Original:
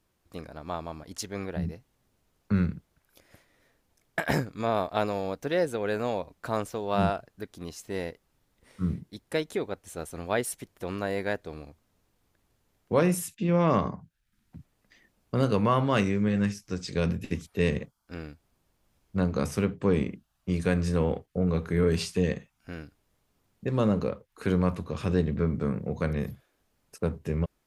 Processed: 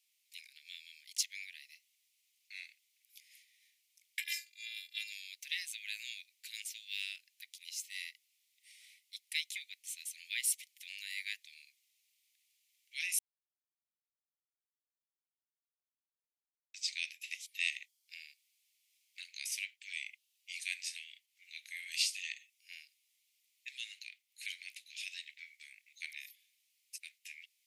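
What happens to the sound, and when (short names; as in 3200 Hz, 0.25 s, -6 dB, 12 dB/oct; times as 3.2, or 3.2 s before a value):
4.21–5.12 robotiser 342 Hz
13.19–16.74 mute
whole clip: steep high-pass 2100 Hz 72 dB/oct; gain +3 dB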